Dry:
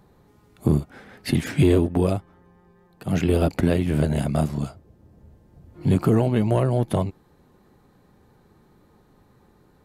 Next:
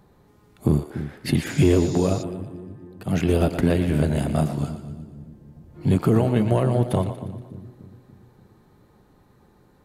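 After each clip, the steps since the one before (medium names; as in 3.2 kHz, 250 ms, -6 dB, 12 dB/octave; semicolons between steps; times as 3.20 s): two-band feedback delay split 360 Hz, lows 290 ms, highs 118 ms, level -10.5 dB; spectral replace 1.52–2.20 s, 3.5–7.3 kHz before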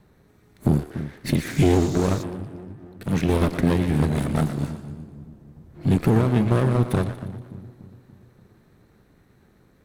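comb filter that takes the minimum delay 0.49 ms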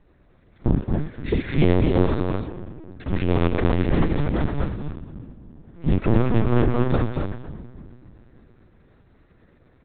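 delay 230 ms -3.5 dB; LPC vocoder at 8 kHz pitch kept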